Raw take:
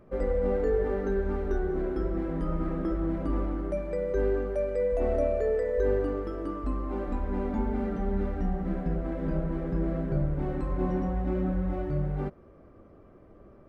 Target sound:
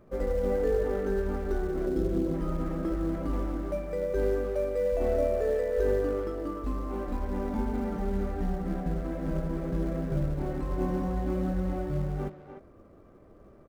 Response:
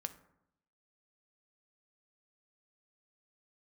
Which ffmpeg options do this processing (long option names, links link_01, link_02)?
-filter_complex "[0:a]asettb=1/sr,asplit=3[link_01][link_02][link_03];[link_01]atrim=end=1.864[link_04];[link_02]atrim=start=1.86:end=2.34,asetpts=PTS-STARTPTS,afade=type=in:duration=0.004:curve=qsin,afade=type=out:start_time=0.476:duration=0.004:curve=qsin,equalizer=frequency=125:width_type=o:width=1:gain=7,equalizer=frequency=250:width_type=o:width=1:gain=4,equalizer=frequency=500:width_type=o:width=1:gain=5,equalizer=frequency=1000:width_type=o:width=1:gain=-9,equalizer=frequency=2000:width_type=o:width=1:gain=-11[link_05];[link_03]atrim=start=2.336[link_06];[link_04][link_05]acrossfade=duration=0.004:curve1=hsin:curve2=qsin[link_07];[link_07][link_06]acrossfade=duration=0.004:curve1=qsin:curve2=hsin,asplit=2[link_08][link_09];[link_09]acrusher=bits=4:mode=log:mix=0:aa=0.000001,volume=-9dB[link_10];[link_08][link_10]amix=inputs=2:normalize=0,asplit=2[link_11][link_12];[link_12]adelay=300,highpass=300,lowpass=3400,asoftclip=type=hard:threshold=-21.5dB,volume=-8dB[link_13];[link_11][link_13]amix=inputs=2:normalize=0,volume=-4dB"